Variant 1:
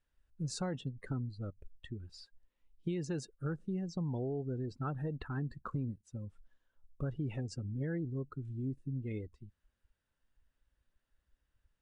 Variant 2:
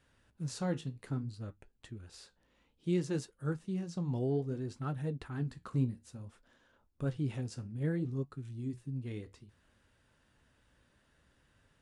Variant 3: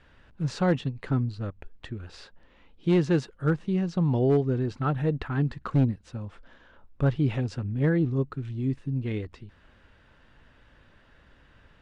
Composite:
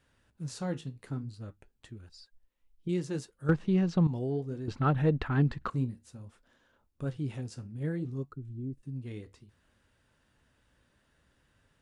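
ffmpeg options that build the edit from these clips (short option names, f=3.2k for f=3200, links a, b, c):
-filter_complex "[0:a]asplit=2[a][b];[2:a]asplit=2[c][d];[1:a]asplit=5[e][f][g][h][i];[e]atrim=end=2.092[j];[a]atrim=start=2.088:end=2.892[k];[f]atrim=start=2.888:end=3.492[l];[c]atrim=start=3.488:end=4.072[m];[g]atrim=start=4.068:end=4.682[n];[d]atrim=start=4.678:end=5.702[o];[h]atrim=start=5.698:end=8.322[p];[b]atrim=start=8.318:end=8.832[q];[i]atrim=start=8.828[r];[j][k]acrossfade=d=0.004:c1=hsin:c2=hsin[s];[s][l]acrossfade=d=0.004:c1=hsin:c2=hsin[t];[t][m]acrossfade=d=0.004:c1=hsin:c2=hsin[u];[u][n]acrossfade=d=0.004:c1=hsin:c2=hsin[v];[v][o]acrossfade=d=0.004:c1=hsin:c2=hsin[w];[w][p]acrossfade=d=0.004:c1=hsin:c2=hsin[x];[x][q]acrossfade=d=0.004:c1=hsin:c2=hsin[y];[y][r]acrossfade=d=0.004:c1=hsin:c2=hsin"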